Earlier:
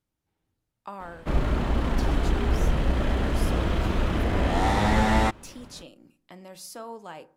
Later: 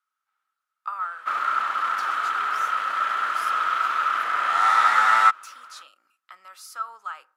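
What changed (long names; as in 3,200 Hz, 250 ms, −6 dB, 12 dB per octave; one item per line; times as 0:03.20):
speech: send −6.5 dB
master: add high-pass with resonance 1,300 Hz, resonance Q 13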